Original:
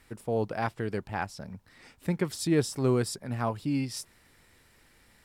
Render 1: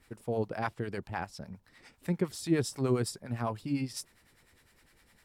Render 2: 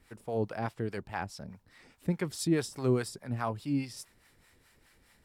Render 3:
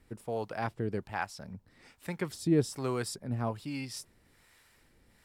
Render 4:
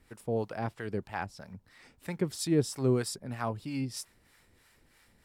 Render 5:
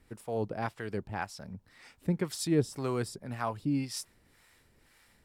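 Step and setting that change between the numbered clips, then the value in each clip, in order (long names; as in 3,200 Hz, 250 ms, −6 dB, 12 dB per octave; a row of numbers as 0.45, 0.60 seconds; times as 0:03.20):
two-band tremolo in antiphase, speed: 9.9, 4.8, 1.2, 3.1, 1.9 Hertz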